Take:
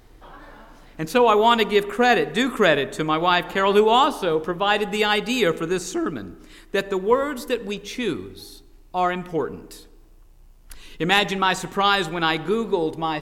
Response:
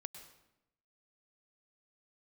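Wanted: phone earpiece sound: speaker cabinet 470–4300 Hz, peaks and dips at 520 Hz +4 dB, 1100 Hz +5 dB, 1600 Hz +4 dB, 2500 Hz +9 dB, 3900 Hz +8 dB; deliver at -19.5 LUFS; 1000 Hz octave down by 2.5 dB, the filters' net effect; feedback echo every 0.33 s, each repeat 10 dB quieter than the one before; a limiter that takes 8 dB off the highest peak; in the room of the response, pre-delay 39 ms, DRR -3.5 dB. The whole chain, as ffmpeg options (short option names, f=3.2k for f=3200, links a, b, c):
-filter_complex "[0:a]equalizer=f=1k:t=o:g=-6.5,alimiter=limit=-14dB:level=0:latency=1,aecho=1:1:330|660|990|1320:0.316|0.101|0.0324|0.0104,asplit=2[a][b];[1:a]atrim=start_sample=2205,adelay=39[c];[b][c]afir=irnorm=-1:irlink=0,volume=7.5dB[d];[a][d]amix=inputs=2:normalize=0,highpass=470,equalizer=f=520:t=q:w=4:g=4,equalizer=f=1.1k:t=q:w=4:g=5,equalizer=f=1.6k:t=q:w=4:g=4,equalizer=f=2.5k:t=q:w=4:g=9,equalizer=f=3.9k:t=q:w=4:g=8,lowpass=f=4.3k:w=0.5412,lowpass=f=4.3k:w=1.3066,volume=-1.5dB"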